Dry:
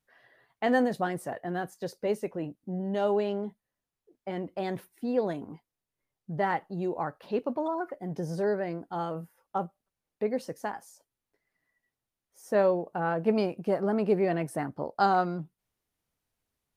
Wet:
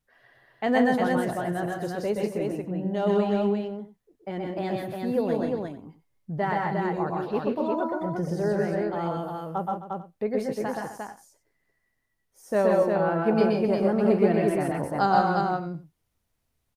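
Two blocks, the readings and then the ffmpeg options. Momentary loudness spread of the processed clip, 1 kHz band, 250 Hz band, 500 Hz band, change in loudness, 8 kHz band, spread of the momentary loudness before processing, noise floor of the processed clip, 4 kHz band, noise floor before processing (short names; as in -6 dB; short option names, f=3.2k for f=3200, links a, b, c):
12 LU, +4.0 dB, +6.0 dB, +4.5 dB, +4.5 dB, n/a, 12 LU, -76 dBFS, +4.0 dB, under -85 dBFS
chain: -af "lowshelf=f=110:g=10,aecho=1:1:123|132|162|261|353|444:0.668|0.531|0.422|0.224|0.668|0.126"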